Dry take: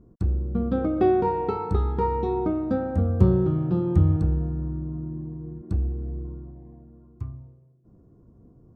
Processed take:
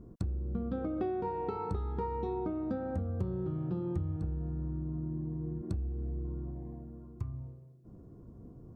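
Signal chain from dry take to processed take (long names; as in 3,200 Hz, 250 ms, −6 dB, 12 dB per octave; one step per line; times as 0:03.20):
downward compressor 5 to 1, threshold −36 dBFS, peak gain reduction 21.5 dB
level +2.5 dB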